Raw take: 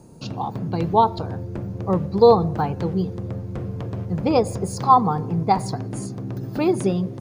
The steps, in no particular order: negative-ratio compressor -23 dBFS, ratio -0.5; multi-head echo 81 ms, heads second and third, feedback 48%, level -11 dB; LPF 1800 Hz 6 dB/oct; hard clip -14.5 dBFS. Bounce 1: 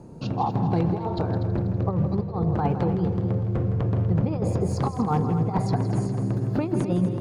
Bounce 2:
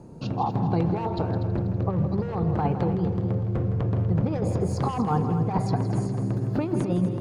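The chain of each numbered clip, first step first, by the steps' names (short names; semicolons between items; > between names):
LPF > negative-ratio compressor > hard clip > multi-head echo; hard clip > LPF > negative-ratio compressor > multi-head echo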